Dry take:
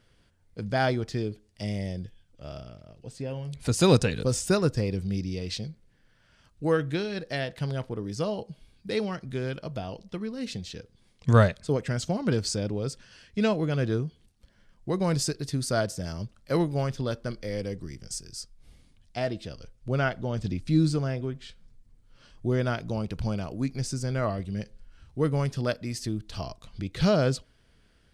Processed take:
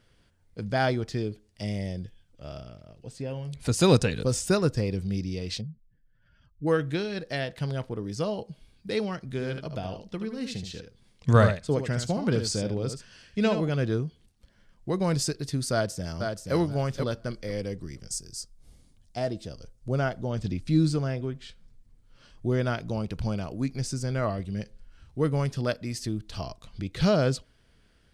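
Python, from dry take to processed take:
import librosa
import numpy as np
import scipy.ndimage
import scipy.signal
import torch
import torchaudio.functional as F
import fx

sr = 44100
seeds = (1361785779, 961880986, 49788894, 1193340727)

y = fx.spec_expand(x, sr, power=1.9, at=(5.6, 6.66), fade=0.02)
y = fx.echo_single(y, sr, ms=75, db=-8.0, at=(9.3, 13.69))
y = fx.echo_throw(y, sr, start_s=15.72, length_s=0.83, ms=480, feedback_pct=15, wet_db=-5.0)
y = fx.curve_eq(y, sr, hz=(710.0, 2500.0, 6800.0), db=(0, -7, 3), at=(18.09, 20.31))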